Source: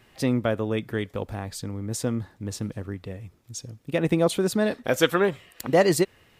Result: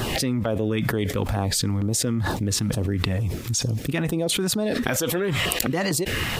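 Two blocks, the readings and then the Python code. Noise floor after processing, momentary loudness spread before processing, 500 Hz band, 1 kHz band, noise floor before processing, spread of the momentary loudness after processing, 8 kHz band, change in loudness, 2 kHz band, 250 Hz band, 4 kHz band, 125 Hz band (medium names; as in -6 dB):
-30 dBFS, 16 LU, -3.0 dB, -0.5 dB, -59 dBFS, 3 LU, +9.0 dB, +1.5 dB, +3.0 dB, +1.5 dB, +7.5 dB, +6.0 dB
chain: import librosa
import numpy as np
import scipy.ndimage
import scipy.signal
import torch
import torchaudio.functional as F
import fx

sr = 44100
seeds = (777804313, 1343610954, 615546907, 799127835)

y = fx.filter_lfo_notch(x, sr, shape='saw_down', hz=2.2, low_hz=310.0, high_hz=2400.0, q=1.2)
y = fx.env_flatten(y, sr, amount_pct=100)
y = y * librosa.db_to_amplitude(-7.5)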